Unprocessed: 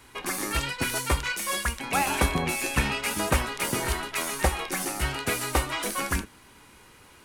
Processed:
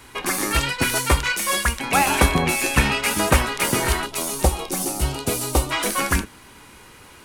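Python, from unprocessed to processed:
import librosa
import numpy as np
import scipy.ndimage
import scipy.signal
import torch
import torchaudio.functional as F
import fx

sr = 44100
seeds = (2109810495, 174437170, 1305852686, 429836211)

y = fx.peak_eq(x, sr, hz=1800.0, db=-15.0, octaves=1.2, at=(4.06, 5.71))
y = y * librosa.db_to_amplitude(7.0)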